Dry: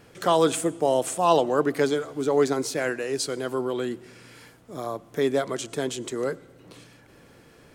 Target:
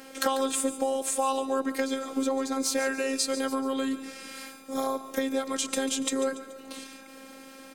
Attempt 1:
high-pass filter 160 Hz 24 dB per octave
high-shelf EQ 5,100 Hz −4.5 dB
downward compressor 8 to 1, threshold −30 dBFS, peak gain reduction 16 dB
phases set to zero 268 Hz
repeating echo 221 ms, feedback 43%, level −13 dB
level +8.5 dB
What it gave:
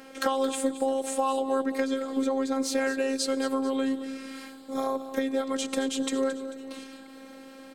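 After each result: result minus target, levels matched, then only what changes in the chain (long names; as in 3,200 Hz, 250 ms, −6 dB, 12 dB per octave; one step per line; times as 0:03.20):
echo 78 ms late; 8,000 Hz band −5.5 dB
change: repeating echo 143 ms, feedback 43%, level −13 dB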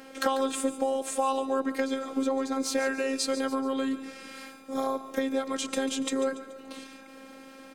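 8,000 Hz band −4.5 dB
change: high-shelf EQ 5,100 Hz +5 dB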